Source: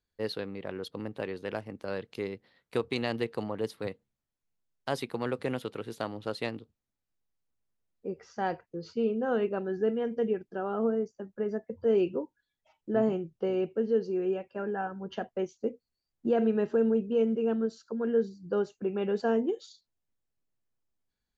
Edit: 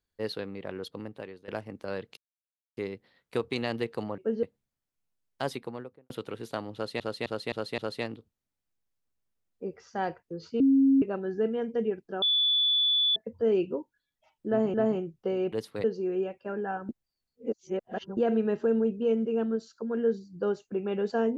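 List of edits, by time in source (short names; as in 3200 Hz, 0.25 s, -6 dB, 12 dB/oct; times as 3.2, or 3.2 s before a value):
0.86–1.48 fade out, to -15.5 dB
2.17 insert silence 0.60 s
3.58–3.9 swap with 13.69–13.94
4.89–5.57 studio fade out
6.21–6.47 loop, 5 plays
9.03–9.45 bleep 271 Hz -17.5 dBFS
10.65–11.59 bleep 3460 Hz -21.5 dBFS
12.91–13.17 loop, 2 plays
14.99–16.27 reverse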